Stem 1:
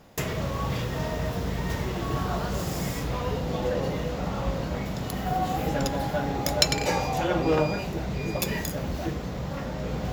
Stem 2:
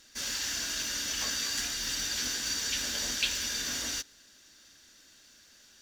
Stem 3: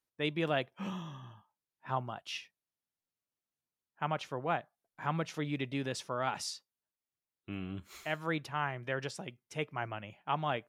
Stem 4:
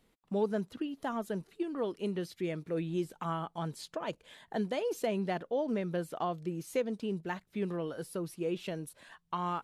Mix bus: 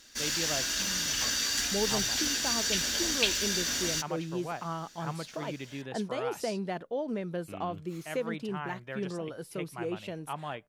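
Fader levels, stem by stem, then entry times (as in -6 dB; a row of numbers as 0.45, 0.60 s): off, +2.5 dB, -4.5 dB, -1.0 dB; off, 0.00 s, 0.00 s, 1.40 s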